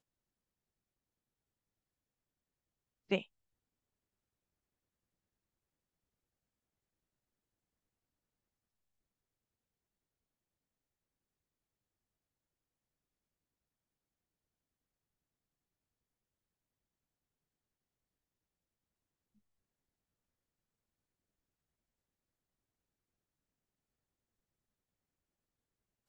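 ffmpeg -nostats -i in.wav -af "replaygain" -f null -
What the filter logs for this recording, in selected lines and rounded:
track_gain = +64.0 dB
track_peak = 0.094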